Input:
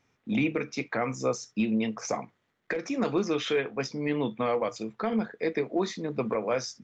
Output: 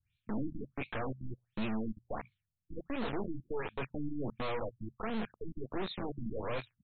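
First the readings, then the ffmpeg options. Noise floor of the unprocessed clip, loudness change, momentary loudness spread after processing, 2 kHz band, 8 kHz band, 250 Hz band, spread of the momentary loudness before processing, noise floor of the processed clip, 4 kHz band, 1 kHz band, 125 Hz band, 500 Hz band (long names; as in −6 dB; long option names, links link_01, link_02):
−75 dBFS, −10.0 dB, 7 LU, −10.0 dB, can't be measured, −9.5 dB, 6 LU, below −85 dBFS, −10.0 dB, −8.0 dB, −5.0 dB, −11.5 dB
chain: -filter_complex "[0:a]equalizer=frequency=6300:width=5.4:gain=6,bandreject=frequency=2000:width=7.1,acrossover=split=1700[link_01][link_02];[link_02]adelay=30[link_03];[link_01][link_03]amix=inputs=2:normalize=0,acrossover=split=110|2600[link_04][link_05][link_06];[link_05]acrusher=bits=3:dc=4:mix=0:aa=0.000001[link_07];[link_04][link_07][link_06]amix=inputs=3:normalize=0,asoftclip=type=tanh:threshold=-29.5dB,afftfilt=real='re*lt(b*sr/1024,300*pow(4400/300,0.5+0.5*sin(2*PI*1.4*pts/sr)))':imag='im*lt(b*sr/1024,300*pow(4400/300,0.5+0.5*sin(2*PI*1.4*pts/sr)))':win_size=1024:overlap=0.75,volume=1.5dB"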